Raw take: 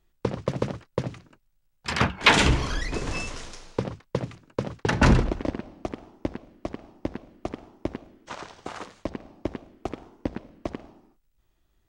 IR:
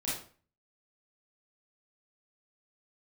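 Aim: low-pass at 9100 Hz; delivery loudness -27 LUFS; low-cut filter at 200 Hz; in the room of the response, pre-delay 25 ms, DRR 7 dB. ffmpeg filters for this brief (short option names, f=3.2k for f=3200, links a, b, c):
-filter_complex "[0:a]highpass=200,lowpass=9.1k,asplit=2[a][b];[1:a]atrim=start_sample=2205,adelay=25[c];[b][c]afir=irnorm=-1:irlink=0,volume=-11dB[d];[a][d]amix=inputs=2:normalize=0,volume=1.5dB"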